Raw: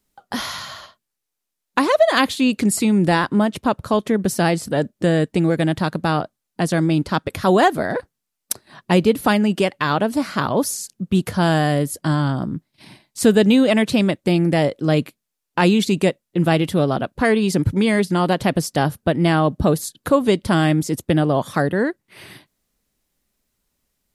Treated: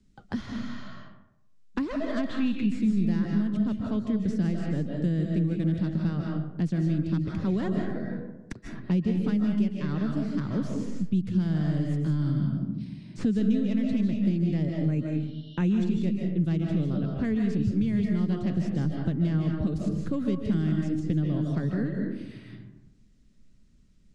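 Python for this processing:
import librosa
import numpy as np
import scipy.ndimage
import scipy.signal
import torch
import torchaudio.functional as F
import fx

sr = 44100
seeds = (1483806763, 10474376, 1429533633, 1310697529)

y = fx.tracing_dist(x, sr, depth_ms=0.21)
y = fx.spec_box(y, sr, start_s=2.28, length_s=0.37, low_hz=960.0, high_hz=4300.0, gain_db=8)
y = scipy.signal.sosfilt(scipy.signal.butter(4, 7500.0, 'lowpass', fs=sr, output='sos'), y)
y = fx.spec_repair(y, sr, seeds[0], start_s=14.78, length_s=0.95, low_hz=2800.0, high_hz=5800.0, source='both')
y = fx.curve_eq(y, sr, hz=(210.0, 790.0, 1600.0), db=(0, -23, -16))
y = fx.rev_freeverb(y, sr, rt60_s=0.75, hf_ratio=0.5, predelay_ms=110, drr_db=1.0)
y = fx.band_squash(y, sr, depth_pct=70)
y = F.gain(torch.from_numpy(y), -7.0).numpy()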